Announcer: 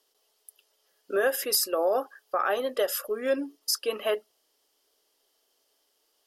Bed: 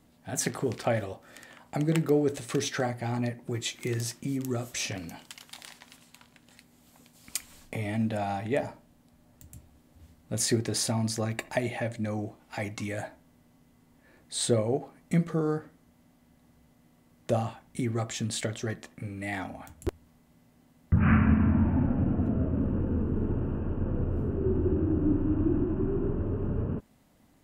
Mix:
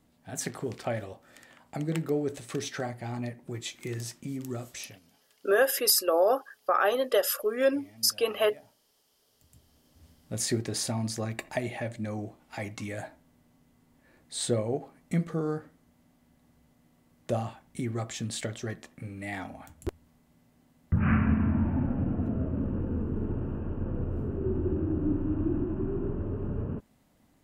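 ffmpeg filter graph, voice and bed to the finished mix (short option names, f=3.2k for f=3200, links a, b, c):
-filter_complex "[0:a]adelay=4350,volume=2dB[a];[1:a]volume=16dB,afade=t=out:st=4.66:d=0.34:silence=0.11885,afade=t=in:st=9.26:d=0.86:silence=0.0944061[b];[a][b]amix=inputs=2:normalize=0"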